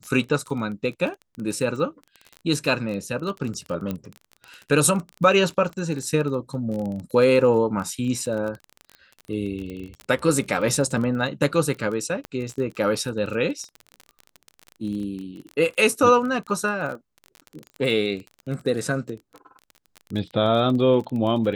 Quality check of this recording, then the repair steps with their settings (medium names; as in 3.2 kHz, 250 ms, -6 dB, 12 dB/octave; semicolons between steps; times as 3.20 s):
crackle 23 per s -29 dBFS
3.91 s: pop -16 dBFS
12.25 s: pop -19 dBFS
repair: de-click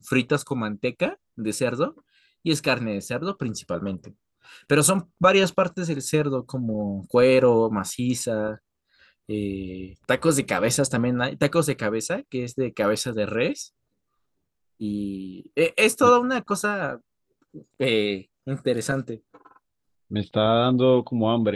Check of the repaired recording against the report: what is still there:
3.91 s: pop